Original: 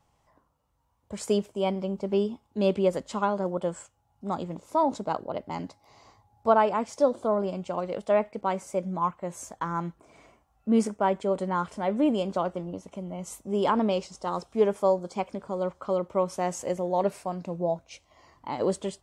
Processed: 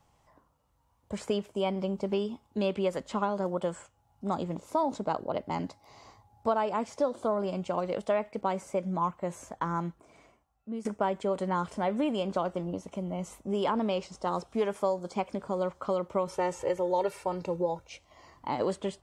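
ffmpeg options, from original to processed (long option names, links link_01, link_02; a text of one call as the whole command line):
ffmpeg -i in.wav -filter_complex "[0:a]asettb=1/sr,asplit=3[link_01][link_02][link_03];[link_01]atrim=end=16.274[link_04];[link_02]atrim=start=16.27:end=17.88,asetpts=PTS-STARTPTS,afade=type=in:duration=0.004:curve=qsin,afade=type=out:start_time=1.606:duration=0.004:curve=qsin,aecho=1:1:2.2:0.89,atrim=end_sample=71001[link_05];[link_03]atrim=start=17.876[link_06];[link_04][link_05]acrossfade=duration=0.004:curve1=hsin:curve2=qsin[link_07];[link_07][link_06]acrossfade=duration=0.004:curve1=qsin:curve2=hsin,asplit=2[link_08][link_09];[link_08]atrim=end=10.85,asetpts=PTS-STARTPTS,afade=type=out:start_time=9.55:duration=1.3:silence=0.0794328[link_10];[link_09]atrim=start=10.85,asetpts=PTS-STARTPTS,afade=type=in:duration=0.004:curve=hsin:silence=0.0794328[link_11];[link_10][link_11]concat=n=2:v=0:a=1,acrossover=split=910|3300[link_12][link_13][link_14];[link_12]acompressor=threshold=-30dB:ratio=4[link_15];[link_13]acompressor=threshold=-36dB:ratio=4[link_16];[link_14]acompressor=threshold=-53dB:ratio=4[link_17];[link_15][link_16][link_17]amix=inputs=3:normalize=0,volume=2dB" out.wav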